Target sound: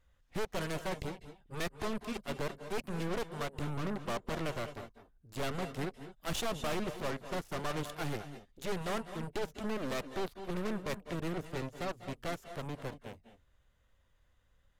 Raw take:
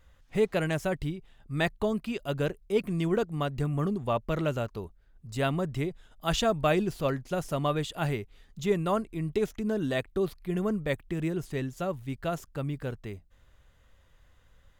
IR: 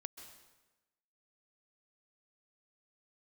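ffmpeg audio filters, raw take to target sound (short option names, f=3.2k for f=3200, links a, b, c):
-filter_complex "[0:a]volume=24.5dB,asoftclip=hard,volume=-24.5dB,aeval=exprs='0.0631*(cos(1*acos(clip(val(0)/0.0631,-1,1)))-cos(1*PI/2))+0.0316*(cos(2*acos(clip(val(0)/0.0631,-1,1)))-cos(2*PI/2))+0.0158*(cos(7*acos(clip(val(0)/0.0631,-1,1)))-cos(7*PI/2))':c=same[a];[1:a]atrim=start_sample=2205,atrim=end_sample=6615,asetrate=28665,aresample=44100[b];[a][b]afir=irnorm=-1:irlink=0,volume=-5dB"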